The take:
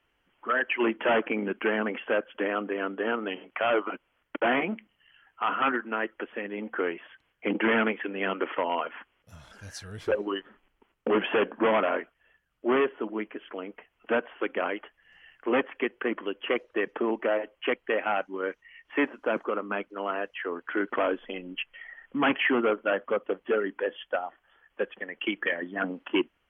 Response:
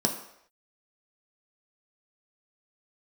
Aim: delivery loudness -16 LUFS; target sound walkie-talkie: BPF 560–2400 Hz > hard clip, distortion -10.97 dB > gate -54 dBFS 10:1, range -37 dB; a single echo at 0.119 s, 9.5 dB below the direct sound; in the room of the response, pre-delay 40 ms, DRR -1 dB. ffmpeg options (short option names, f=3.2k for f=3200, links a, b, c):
-filter_complex "[0:a]aecho=1:1:119:0.335,asplit=2[a][b];[1:a]atrim=start_sample=2205,adelay=40[c];[b][c]afir=irnorm=-1:irlink=0,volume=-8.5dB[d];[a][d]amix=inputs=2:normalize=0,highpass=560,lowpass=2.4k,asoftclip=type=hard:threshold=-22.5dB,agate=range=-37dB:threshold=-54dB:ratio=10,volume=13.5dB"